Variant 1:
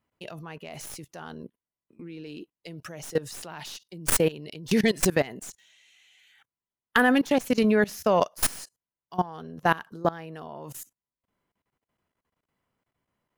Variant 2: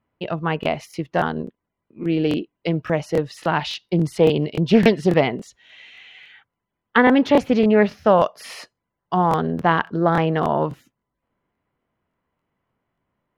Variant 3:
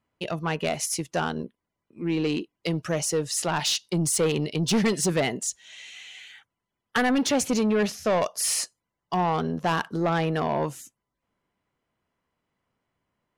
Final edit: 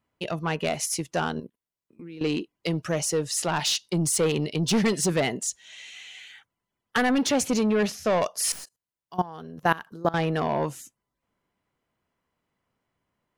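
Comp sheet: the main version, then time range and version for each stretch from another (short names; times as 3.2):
3
1.4–2.21 from 1
8.52–10.14 from 1
not used: 2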